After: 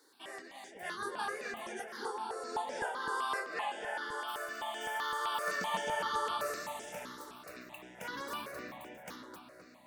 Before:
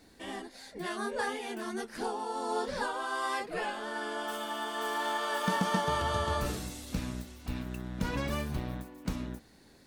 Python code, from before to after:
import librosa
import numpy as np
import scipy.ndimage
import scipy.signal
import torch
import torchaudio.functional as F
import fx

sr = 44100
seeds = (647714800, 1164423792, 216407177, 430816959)

y = fx.octave_divider(x, sr, octaves=1, level_db=3.0, at=(0.62, 1.34))
y = scipy.signal.sosfilt(scipy.signal.butter(2, 480.0, 'highpass', fs=sr, output='sos'), y)
y = fx.echo_filtered(y, sr, ms=260, feedback_pct=63, hz=3000.0, wet_db=-5.5)
y = fx.phaser_held(y, sr, hz=7.8, low_hz=680.0, high_hz=4200.0)